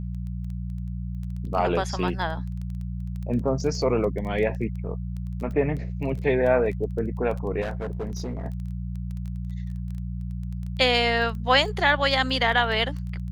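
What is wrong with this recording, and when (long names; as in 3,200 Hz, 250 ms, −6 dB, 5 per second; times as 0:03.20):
surface crackle 11 per second −32 dBFS
mains hum 60 Hz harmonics 3 −31 dBFS
0:07.61–0:08.45: clipping −26 dBFS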